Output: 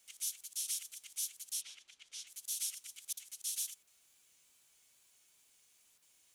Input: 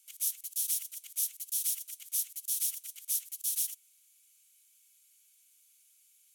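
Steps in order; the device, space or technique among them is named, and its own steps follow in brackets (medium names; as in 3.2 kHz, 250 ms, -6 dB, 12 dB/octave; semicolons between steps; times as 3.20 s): worn cassette (low-pass 7.9 kHz 12 dB/octave; wow and flutter; level dips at 3.13/3.83/5.98 s, 40 ms -14 dB; white noise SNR 30 dB); 1.60–2.26 s: low-pass 2.7 kHz -> 4.8 kHz 12 dB/octave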